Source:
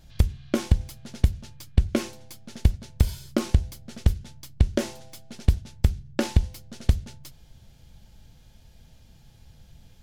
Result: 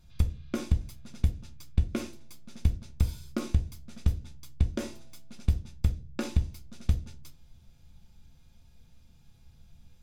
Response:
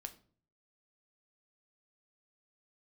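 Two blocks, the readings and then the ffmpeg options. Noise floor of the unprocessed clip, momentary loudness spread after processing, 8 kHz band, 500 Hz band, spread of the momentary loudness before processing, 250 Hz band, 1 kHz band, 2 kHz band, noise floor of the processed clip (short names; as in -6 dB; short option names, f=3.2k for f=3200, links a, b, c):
-54 dBFS, 15 LU, -7.5 dB, -9.0 dB, 15 LU, -6.5 dB, -8.0 dB, -7.5 dB, -57 dBFS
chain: -filter_complex "[1:a]atrim=start_sample=2205,asetrate=66150,aresample=44100[a];[0:a][a]afir=irnorm=-1:irlink=0"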